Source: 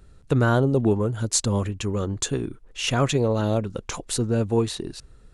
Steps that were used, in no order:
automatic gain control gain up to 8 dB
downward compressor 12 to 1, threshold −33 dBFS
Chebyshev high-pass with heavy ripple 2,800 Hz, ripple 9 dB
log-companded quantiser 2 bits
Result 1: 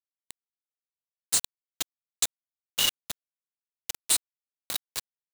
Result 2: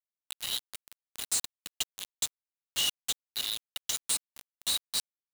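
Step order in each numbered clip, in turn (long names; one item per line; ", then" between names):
downward compressor, then Chebyshev high-pass with heavy ripple, then log-companded quantiser, then automatic gain control
Chebyshev high-pass with heavy ripple, then automatic gain control, then downward compressor, then log-companded quantiser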